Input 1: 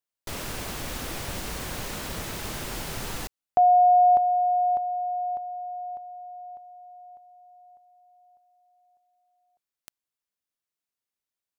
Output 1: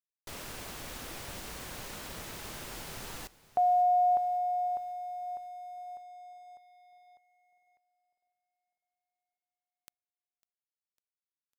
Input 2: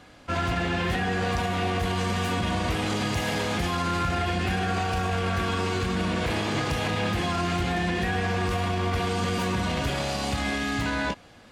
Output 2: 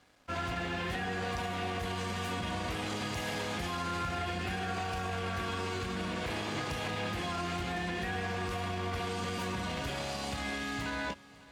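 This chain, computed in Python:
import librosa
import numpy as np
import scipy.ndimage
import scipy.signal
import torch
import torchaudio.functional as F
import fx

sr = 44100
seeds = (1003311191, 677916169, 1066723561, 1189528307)

y = fx.low_shelf(x, sr, hz=310.0, db=-4.0)
y = np.sign(y) * np.maximum(np.abs(y) - 10.0 ** (-55.0 / 20.0), 0.0)
y = fx.echo_feedback(y, sr, ms=551, feedback_pct=58, wet_db=-21)
y = y * 10.0 ** (-7.0 / 20.0)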